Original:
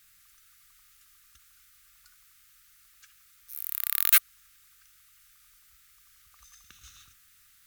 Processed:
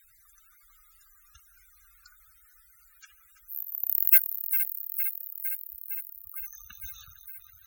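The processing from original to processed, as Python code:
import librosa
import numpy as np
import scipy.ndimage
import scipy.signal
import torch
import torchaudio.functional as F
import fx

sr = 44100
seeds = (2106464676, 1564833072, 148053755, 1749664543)

p1 = fx.reverse_delay_fb(x, sr, ms=229, feedback_pct=83, wet_db=-11.0)
p2 = fx.spec_topn(p1, sr, count=64)
p3 = 10.0 ** (-27.0 / 20.0) * np.tanh(p2 / 10.0 ** (-27.0 / 20.0))
p4 = p2 + F.gain(torch.from_numpy(p3), -5.5).numpy()
p5 = fx.ring_mod(p4, sr, carrier_hz=82.0, at=(3.62, 4.11))
y = F.gain(torch.from_numpy(p5), 3.5).numpy()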